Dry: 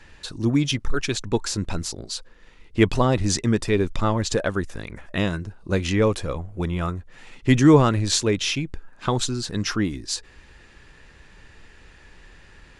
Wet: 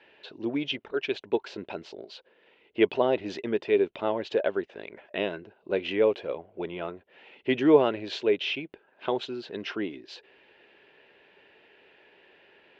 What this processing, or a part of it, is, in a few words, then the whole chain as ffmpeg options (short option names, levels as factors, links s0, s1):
phone earpiece: -af "highpass=380,equalizer=f=400:t=q:w=4:g=7,equalizer=f=620:t=q:w=4:g=5,equalizer=f=1200:t=q:w=4:g=-10,equalizer=f=1800:t=q:w=4:g=-4,equalizer=f=2900:t=q:w=4:g=4,lowpass=f=3200:w=0.5412,lowpass=f=3200:w=1.3066,volume=0.668"